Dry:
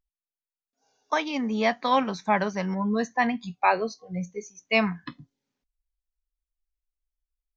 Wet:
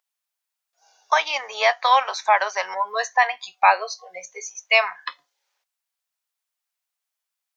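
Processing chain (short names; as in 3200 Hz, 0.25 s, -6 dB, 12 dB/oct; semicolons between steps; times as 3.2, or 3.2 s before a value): inverse Chebyshev high-pass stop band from 250 Hz, stop band 50 dB; in parallel at +2.5 dB: compressor, threshold -32 dBFS, peak gain reduction 15 dB; on the sum: gain +4.5 dB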